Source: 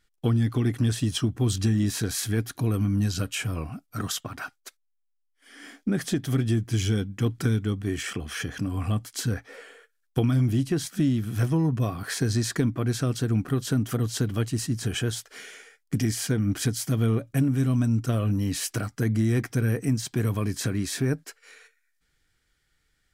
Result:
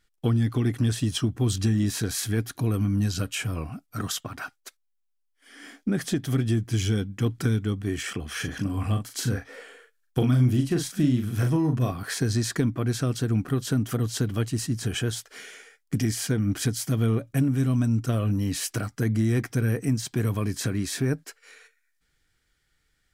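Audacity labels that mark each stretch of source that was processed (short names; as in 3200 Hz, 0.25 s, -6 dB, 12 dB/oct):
8.310000	11.920000	doubler 40 ms -6 dB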